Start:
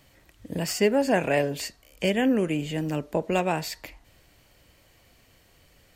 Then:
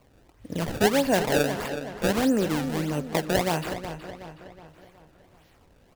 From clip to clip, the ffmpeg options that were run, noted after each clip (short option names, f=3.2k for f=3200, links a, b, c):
-filter_complex "[0:a]acrusher=samples=24:mix=1:aa=0.000001:lfo=1:lforange=38.4:lforate=1.6,asplit=2[a][b];[b]adelay=370,lowpass=f=4.7k:p=1,volume=-10dB,asplit=2[c][d];[d]adelay=370,lowpass=f=4.7k:p=1,volume=0.49,asplit=2[e][f];[f]adelay=370,lowpass=f=4.7k:p=1,volume=0.49,asplit=2[g][h];[h]adelay=370,lowpass=f=4.7k:p=1,volume=0.49,asplit=2[i][j];[j]adelay=370,lowpass=f=4.7k:p=1,volume=0.49[k];[c][e][g][i][k]amix=inputs=5:normalize=0[l];[a][l]amix=inputs=2:normalize=0"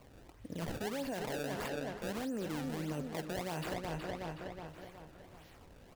-af "alimiter=limit=-21dB:level=0:latency=1:release=75,areverse,acompressor=threshold=-37dB:ratio=6,areverse,volume=1dB"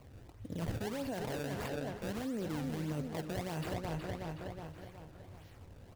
-filter_complex "[0:a]equalizer=f=98:w=1.8:g=11,asplit=2[a][b];[b]acrusher=samples=24:mix=1:aa=0.000001:lfo=1:lforange=24:lforate=1.5,volume=-9.5dB[c];[a][c]amix=inputs=2:normalize=0,volume=-2.5dB"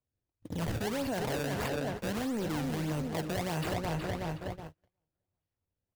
-filter_complex "[0:a]agate=range=-42dB:threshold=-43dB:ratio=16:detection=peak,acrossover=split=710[a][b];[a]asoftclip=type=tanh:threshold=-36dB[c];[c][b]amix=inputs=2:normalize=0,volume=7dB"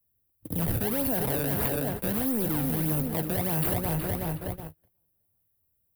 -filter_complex "[0:a]lowshelf=f=470:g=6,acrossover=split=130|1100|5800[a][b][c][d];[d]alimiter=level_in=13.5dB:limit=-24dB:level=0:latency=1,volume=-13.5dB[e];[a][b][c][e]amix=inputs=4:normalize=0,aexciter=amount=13.3:drive=5.4:freq=9.6k"